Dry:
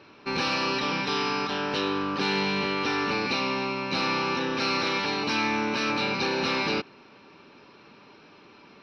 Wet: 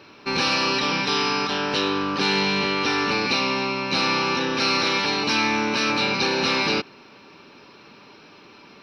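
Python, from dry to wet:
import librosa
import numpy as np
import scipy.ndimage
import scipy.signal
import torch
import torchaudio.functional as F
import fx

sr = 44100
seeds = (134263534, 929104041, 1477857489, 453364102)

y = fx.high_shelf(x, sr, hz=4600.0, db=8.0)
y = y * 10.0 ** (3.5 / 20.0)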